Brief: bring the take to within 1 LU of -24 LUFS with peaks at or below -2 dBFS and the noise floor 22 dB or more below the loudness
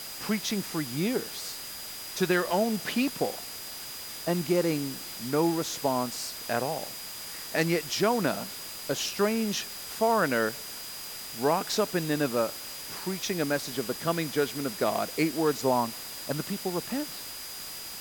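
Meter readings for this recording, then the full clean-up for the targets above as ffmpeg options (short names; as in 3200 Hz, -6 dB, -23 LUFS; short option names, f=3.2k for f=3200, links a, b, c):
steady tone 4900 Hz; tone level -43 dBFS; noise floor -40 dBFS; noise floor target -52 dBFS; loudness -29.5 LUFS; peak -11.5 dBFS; loudness target -24.0 LUFS
-> -af "bandreject=f=4.9k:w=30"
-af "afftdn=nr=12:nf=-40"
-af "volume=5.5dB"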